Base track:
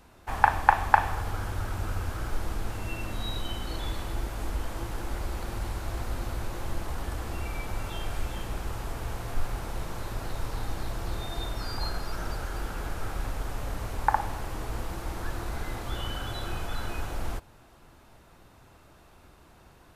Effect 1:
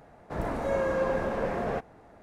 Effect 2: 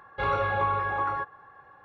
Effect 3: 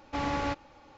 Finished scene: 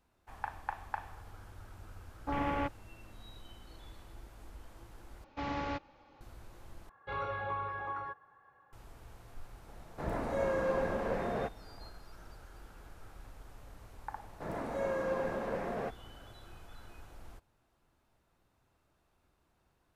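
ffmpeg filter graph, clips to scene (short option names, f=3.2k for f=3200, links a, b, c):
-filter_complex "[3:a]asplit=2[a][b];[1:a]asplit=2[c][d];[0:a]volume=-19dB[e];[a]afwtdn=0.0141[f];[b]lowpass=4.8k[g];[d]highpass=110[h];[e]asplit=3[i][j][k];[i]atrim=end=5.244[l];[g]atrim=end=0.97,asetpts=PTS-STARTPTS,volume=-6dB[m];[j]atrim=start=6.206:end=6.894[n];[2:a]atrim=end=1.84,asetpts=PTS-STARTPTS,volume=-11dB[o];[k]atrim=start=8.726[p];[f]atrim=end=0.97,asetpts=PTS-STARTPTS,volume=-2.5dB,afade=t=in:d=0.004:c=hsin,afade=t=out:st=0.966:d=0.004:c=hsin,adelay=2140[q];[c]atrim=end=2.22,asetpts=PTS-STARTPTS,volume=-4.5dB,afade=t=in:d=0.004:c=hsin,afade=t=out:st=2.216:d=0.004:c=hsin,adelay=9680[r];[h]atrim=end=2.22,asetpts=PTS-STARTPTS,volume=-6.5dB,afade=t=in:d=0.004:c=hsin,afade=t=out:st=2.216:d=0.004:c=hsin,adelay=14100[s];[l][m]acrossfade=d=0.004:c1=hsin:c2=hsin[t];[t][n]acrossfade=d=0.004:c1=hsin:c2=hsin[u];[u][o]acrossfade=d=0.004:c1=hsin:c2=hsin[v];[v][p]acrossfade=d=0.004:c1=hsin:c2=hsin[w];[w][q][r][s]amix=inputs=4:normalize=0"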